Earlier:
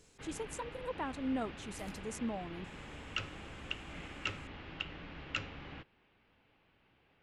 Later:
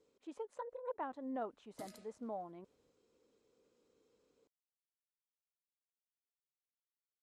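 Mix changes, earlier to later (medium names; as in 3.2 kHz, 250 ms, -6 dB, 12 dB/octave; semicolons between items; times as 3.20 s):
speech: add band-pass filter 670 Hz, Q 1.1; first sound: muted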